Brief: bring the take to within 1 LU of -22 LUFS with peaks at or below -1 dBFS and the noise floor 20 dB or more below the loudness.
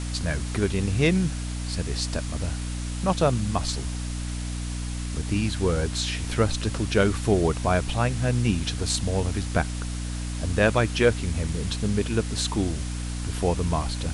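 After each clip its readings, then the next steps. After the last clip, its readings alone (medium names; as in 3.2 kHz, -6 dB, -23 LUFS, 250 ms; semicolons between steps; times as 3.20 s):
hum 60 Hz; highest harmonic 300 Hz; hum level -28 dBFS; noise floor -31 dBFS; noise floor target -46 dBFS; loudness -26.0 LUFS; peak level -7.0 dBFS; loudness target -22.0 LUFS
-> de-hum 60 Hz, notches 5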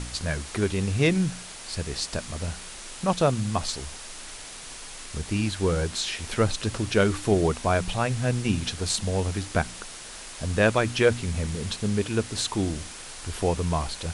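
hum not found; noise floor -41 dBFS; noise floor target -47 dBFS
-> noise reduction 6 dB, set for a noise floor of -41 dBFS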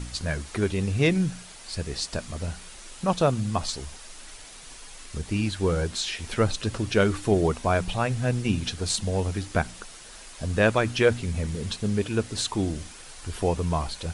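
noise floor -45 dBFS; noise floor target -47 dBFS
-> noise reduction 6 dB, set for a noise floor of -45 dBFS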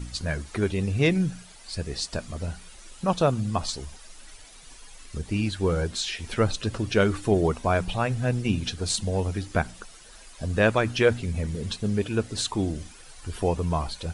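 noise floor -48 dBFS; loudness -26.5 LUFS; peak level -7.5 dBFS; loudness target -22.0 LUFS
-> trim +4.5 dB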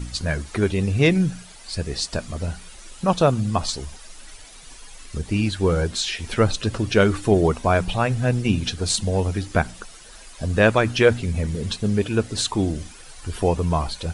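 loudness -22.0 LUFS; peak level -3.0 dBFS; noise floor -44 dBFS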